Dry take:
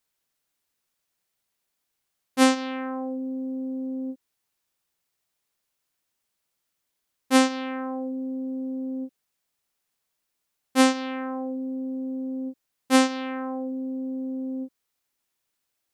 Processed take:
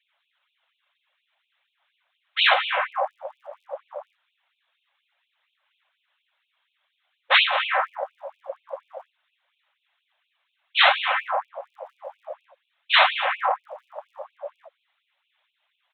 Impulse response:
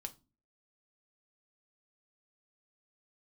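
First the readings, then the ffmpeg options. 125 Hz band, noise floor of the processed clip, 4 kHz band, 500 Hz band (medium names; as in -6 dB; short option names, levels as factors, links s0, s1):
no reading, -77 dBFS, +10.5 dB, -1.0 dB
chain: -af "afftfilt=real='hypot(re,im)*cos(2*PI*random(0))':imag='hypot(re,im)*sin(2*PI*random(1))':win_size=512:overlap=0.75,aresample=8000,aeval=exprs='0.355*sin(PI/2*7.08*val(0)/0.355)':c=same,aresample=44100,aeval=exprs='val(0)+0.00316*(sin(2*PI*50*n/s)+sin(2*PI*2*50*n/s)/2+sin(2*PI*3*50*n/s)/3+sin(2*PI*4*50*n/s)/4+sin(2*PI*5*50*n/s)/5)':c=same,aphaser=in_gain=1:out_gain=1:delay=1.9:decay=0.23:speed=0.52:type=sinusoidal,afftfilt=real='re*gte(b*sr/1024,510*pow(2400/510,0.5+0.5*sin(2*PI*4.2*pts/sr)))':imag='im*gte(b*sr/1024,510*pow(2400/510,0.5+0.5*sin(2*PI*4.2*pts/sr)))':win_size=1024:overlap=0.75"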